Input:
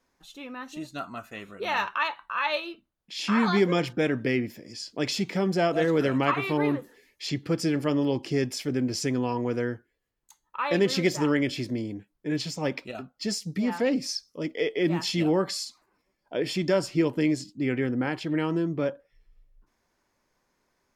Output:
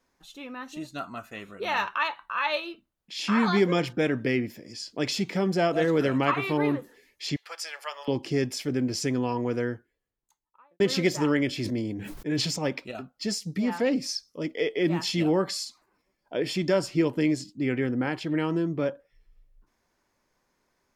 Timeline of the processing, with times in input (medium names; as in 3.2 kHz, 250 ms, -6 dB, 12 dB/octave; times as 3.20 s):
7.36–8.08 s: inverse Chebyshev high-pass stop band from 290 Hz, stop band 50 dB
9.65–10.80 s: studio fade out
11.56–12.59 s: decay stretcher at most 32 dB/s